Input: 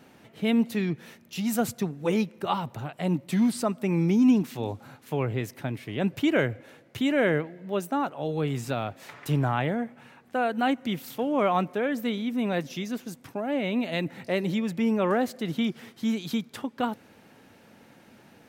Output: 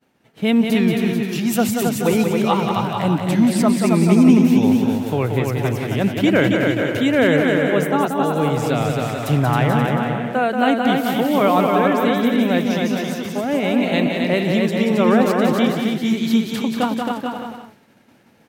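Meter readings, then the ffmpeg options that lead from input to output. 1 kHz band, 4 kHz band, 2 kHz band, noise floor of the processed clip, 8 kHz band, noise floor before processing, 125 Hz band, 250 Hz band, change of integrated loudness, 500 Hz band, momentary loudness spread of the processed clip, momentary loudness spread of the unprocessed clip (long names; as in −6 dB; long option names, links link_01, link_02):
+10.0 dB, +10.0 dB, +10.0 dB, −53 dBFS, +10.5 dB, −56 dBFS, +10.0 dB, +10.0 dB, +10.0 dB, +10.0 dB, 6 LU, 10 LU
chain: -filter_complex "[0:a]asplit=2[link_01][link_02];[link_02]aecho=0:1:270|432|529.2|587.5|622.5:0.631|0.398|0.251|0.158|0.1[link_03];[link_01][link_03]amix=inputs=2:normalize=0,agate=range=-33dB:threshold=-43dB:ratio=3:detection=peak,asplit=2[link_04][link_05];[link_05]aecho=0:1:182:0.531[link_06];[link_04][link_06]amix=inputs=2:normalize=0,volume=7dB"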